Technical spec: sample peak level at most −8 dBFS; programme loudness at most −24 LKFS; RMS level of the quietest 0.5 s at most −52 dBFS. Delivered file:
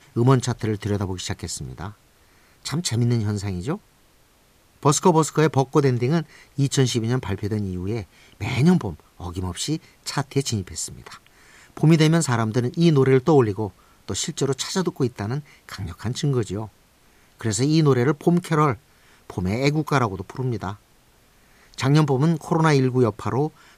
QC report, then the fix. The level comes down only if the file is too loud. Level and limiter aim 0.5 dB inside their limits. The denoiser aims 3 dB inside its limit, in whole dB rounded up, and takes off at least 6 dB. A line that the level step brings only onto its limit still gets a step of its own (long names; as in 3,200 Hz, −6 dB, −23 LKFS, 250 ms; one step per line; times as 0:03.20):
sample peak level −5.0 dBFS: out of spec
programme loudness −22.0 LKFS: out of spec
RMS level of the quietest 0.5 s −58 dBFS: in spec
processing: level −2.5 dB
brickwall limiter −8.5 dBFS